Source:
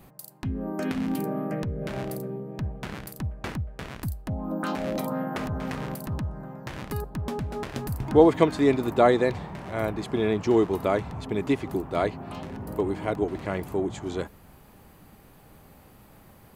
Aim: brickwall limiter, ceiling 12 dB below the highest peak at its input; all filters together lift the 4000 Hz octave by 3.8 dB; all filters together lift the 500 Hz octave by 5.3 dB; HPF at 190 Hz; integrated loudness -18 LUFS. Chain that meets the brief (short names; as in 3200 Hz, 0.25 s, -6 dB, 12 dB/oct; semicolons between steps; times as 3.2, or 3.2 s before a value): HPF 190 Hz; bell 500 Hz +6.5 dB; bell 4000 Hz +4.5 dB; gain +9 dB; limiter -2.5 dBFS